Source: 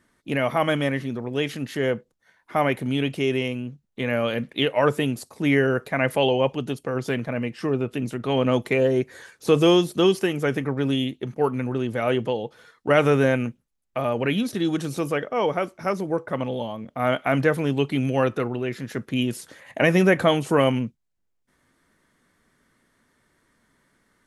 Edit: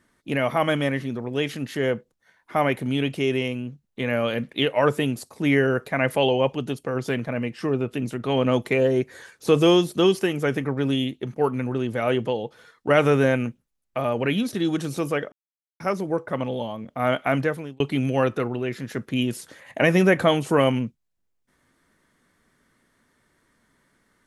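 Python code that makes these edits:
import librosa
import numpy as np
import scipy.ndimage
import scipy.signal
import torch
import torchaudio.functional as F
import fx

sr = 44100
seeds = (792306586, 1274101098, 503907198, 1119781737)

y = fx.edit(x, sr, fx.silence(start_s=15.32, length_s=0.48),
    fx.fade_out_span(start_s=17.29, length_s=0.51), tone=tone)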